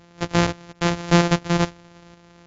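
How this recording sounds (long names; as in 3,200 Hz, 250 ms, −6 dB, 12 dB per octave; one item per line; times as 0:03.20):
a buzz of ramps at a fixed pitch in blocks of 256 samples
tremolo saw up 1.4 Hz, depth 45%
MP2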